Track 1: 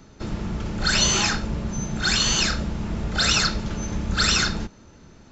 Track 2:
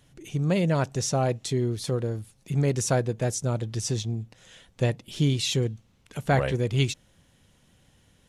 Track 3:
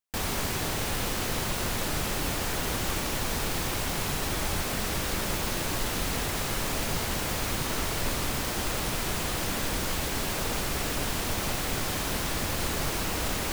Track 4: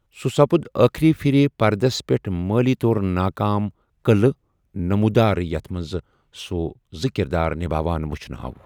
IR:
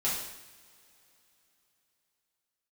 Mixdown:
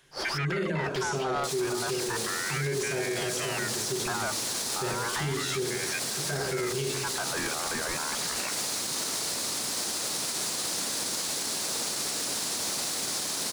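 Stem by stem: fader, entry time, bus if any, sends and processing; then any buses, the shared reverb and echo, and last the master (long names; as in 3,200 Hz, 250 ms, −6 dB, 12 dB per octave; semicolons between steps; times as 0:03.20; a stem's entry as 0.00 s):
muted
0.0 dB, 0.00 s, bus B, send −12 dB, hollow resonant body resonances 400/1,600 Hz, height 14 dB, ringing for 45 ms
−1.5 dB, 1.30 s, bus A, no send, high-pass filter 210 Hz 12 dB per octave; flat-topped bell 6,400 Hz +11 dB
−12.0 dB, 0.00 s, bus A, no send, parametric band 3,400 Hz +8.5 dB 0.5 octaves; mid-hump overdrive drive 32 dB, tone 1,700 Hz, clips at 0 dBFS; ring modulator whose carrier an LFO sweeps 1,500 Hz, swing 35%, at 0.33 Hz
bus A: 0.0 dB, brickwall limiter −19.5 dBFS, peak gain reduction 9 dB
bus B: 0.0 dB, inverse Chebyshev high-pass filter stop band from 370 Hz; downward compressor, threshold −34 dBFS, peak gain reduction 14 dB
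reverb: on, pre-delay 3 ms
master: brickwall limiter −21.5 dBFS, peak gain reduction 12.5 dB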